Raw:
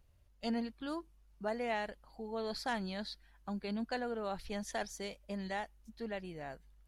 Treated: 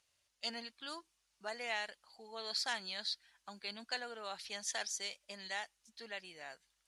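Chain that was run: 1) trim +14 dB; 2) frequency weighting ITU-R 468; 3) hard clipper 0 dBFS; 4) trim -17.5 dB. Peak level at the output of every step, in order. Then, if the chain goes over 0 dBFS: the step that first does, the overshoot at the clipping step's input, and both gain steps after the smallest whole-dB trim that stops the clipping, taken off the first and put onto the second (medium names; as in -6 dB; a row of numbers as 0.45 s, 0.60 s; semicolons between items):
-9.0 dBFS, -5.0 dBFS, -5.0 dBFS, -22.5 dBFS; nothing clips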